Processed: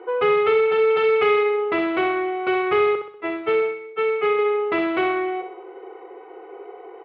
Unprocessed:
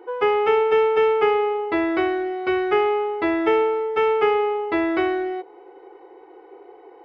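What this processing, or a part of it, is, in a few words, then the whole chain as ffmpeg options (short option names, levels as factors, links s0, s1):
overdrive pedal into a guitar cabinet: -filter_complex "[0:a]bandreject=f=860:w=12,asettb=1/sr,asplit=3[s0][s1][s2];[s0]atrim=end=0.904[s3];[s1]atrim=start=0.9:end=1.43,asetpts=PTS-STARTPTS,afade=t=in:d=0.004:c=qsin,afade=t=out:st=0.526:d=0.004:c=qsin,aemphasis=mode=production:type=75kf[s4];[s2]atrim=start=1.426[s5];[s3][s4]acrossfade=d=0.004:c1=hsin:c2=qsin[s6];[s6][s5]acrossfade=d=0.004:c1=qsin:c2=hsin,asettb=1/sr,asplit=3[s7][s8][s9];[s7]atrim=end=2.954[s10];[s8]atrim=start=2.95:end=4.39,asetpts=PTS-STARTPTS,afade=t=in:d=0.004:c=qsin,afade=t=out:st=1.436:d=0.004:c=qsin,agate=range=0.0224:threshold=0.2:ratio=3:detection=peak[s11];[s9]atrim=start=4.386[s12];[s10][s11]acrossfade=d=0.004:c1=hsin:c2=qsin[s13];[s13][s12]acrossfade=d=0.004:c1=qsin:c2=hsin,asplit=2[s14][s15];[s15]highpass=f=720:p=1,volume=7.94,asoftclip=type=tanh:threshold=0.376[s16];[s14][s16]amix=inputs=2:normalize=0,lowpass=f=1700:p=1,volume=0.501,highpass=110,equalizer=f=150:t=q:w=4:g=4,equalizer=f=300:t=q:w=4:g=-7,equalizer=f=570:t=q:w=4:g=-4,equalizer=f=890:t=q:w=4:g=-7,equalizer=f=1700:t=q:w=4:g=-7,lowpass=f=3400:w=0.5412,lowpass=f=3400:w=1.3066,aecho=1:1:63|126|189|252|315|378:0.422|0.207|0.101|0.0496|0.0243|0.0119"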